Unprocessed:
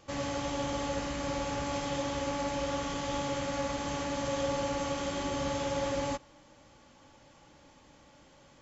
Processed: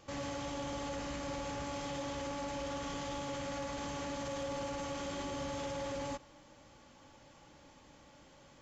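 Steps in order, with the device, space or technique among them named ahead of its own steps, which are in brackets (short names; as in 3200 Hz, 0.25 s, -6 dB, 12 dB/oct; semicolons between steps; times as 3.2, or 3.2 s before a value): soft clipper into limiter (soft clip -25.5 dBFS, distortion -20 dB; limiter -32 dBFS, peak gain reduction 6 dB); gain -1 dB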